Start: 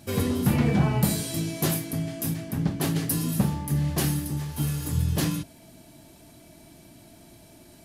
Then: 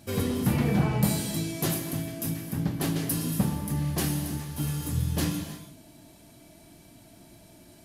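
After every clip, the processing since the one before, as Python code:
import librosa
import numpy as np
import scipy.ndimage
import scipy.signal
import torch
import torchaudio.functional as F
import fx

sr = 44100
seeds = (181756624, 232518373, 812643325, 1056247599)

y = fx.rev_gated(x, sr, seeds[0], gate_ms=350, shape='flat', drr_db=7.5)
y = F.gain(torch.from_numpy(y), -2.5).numpy()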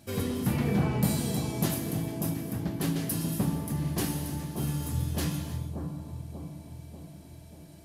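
y = fx.echo_bbd(x, sr, ms=589, stages=4096, feedback_pct=58, wet_db=-5.0)
y = F.gain(torch.from_numpy(y), -3.0).numpy()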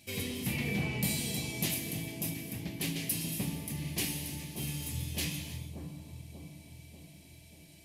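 y = fx.high_shelf_res(x, sr, hz=1800.0, db=8.0, q=3.0)
y = F.gain(torch.from_numpy(y), -7.5).numpy()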